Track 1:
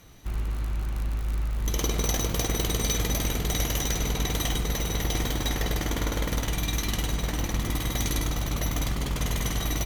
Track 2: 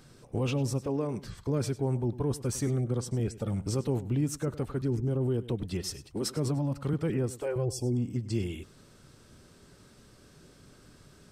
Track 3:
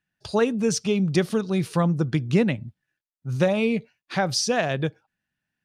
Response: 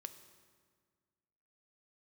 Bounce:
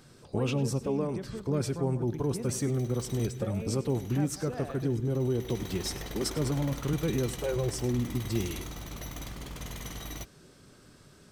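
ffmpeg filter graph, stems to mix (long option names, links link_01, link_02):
-filter_complex "[0:a]adelay=400,volume=-10.5dB[link_01];[1:a]volume=-1.5dB,asplit=2[link_02][link_03];[link_03]volume=-6dB[link_04];[2:a]lowpass=frequency=1000:poles=1,acompressor=threshold=-27dB:ratio=2,volume=-11.5dB,asplit=3[link_05][link_06][link_07];[link_06]volume=-11dB[link_08];[link_07]apad=whole_len=452158[link_09];[link_01][link_09]sidechaincompress=threshold=-55dB:ratio=6:attack=11:release=664[link_10];[3:a]atrim=start_sample=2205[link_11];[link_04][link_11]afir=irnorm=-1:irlink=0[link_12];[link_08]aecho=0:1:194:1[link_13];[link_10][link_02][link_05][link_12][link_13]amix=inputs=5:normalize=0,lowshelf=frequency=73:gain=-5.5"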